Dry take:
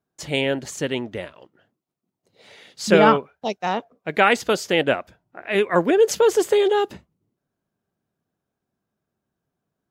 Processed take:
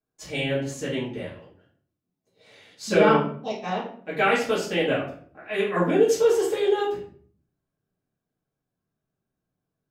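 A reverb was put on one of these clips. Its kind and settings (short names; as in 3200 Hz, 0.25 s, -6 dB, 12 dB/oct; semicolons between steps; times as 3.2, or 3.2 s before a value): shoebox room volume 51 m³, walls mixed, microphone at 2.3 m; gain -15 dB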